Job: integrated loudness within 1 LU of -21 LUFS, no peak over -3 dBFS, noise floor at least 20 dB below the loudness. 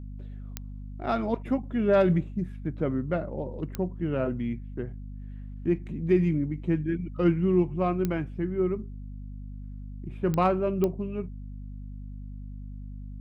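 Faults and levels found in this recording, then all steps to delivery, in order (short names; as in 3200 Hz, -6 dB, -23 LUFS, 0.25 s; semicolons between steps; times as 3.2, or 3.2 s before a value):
clicks 5; hum 50 Hz; harmonics up to 250 Hz; hum level -36 dBFS; loudness -28.0 LUFS; peak -11.5 dBFS; loudness target -21.0 LUFS
-> de-click; notches 50/100/150/200/250 Hz; gain +7 dB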